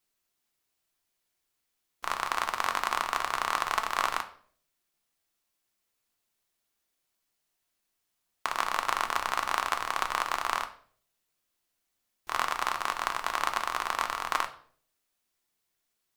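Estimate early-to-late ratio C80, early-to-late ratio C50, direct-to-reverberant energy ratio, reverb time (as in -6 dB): 17.5 dB, 13.0 dB, 6.0 dB, 0.50 s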